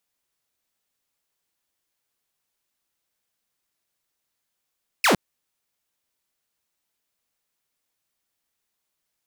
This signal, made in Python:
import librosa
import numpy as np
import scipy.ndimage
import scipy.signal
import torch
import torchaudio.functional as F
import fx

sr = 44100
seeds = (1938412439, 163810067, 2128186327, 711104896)

y = fx.laser_zap(sr, level_db=-12.5, start_hz=2800.0, end_hz=150.0, length_s=0.11, wave='saw')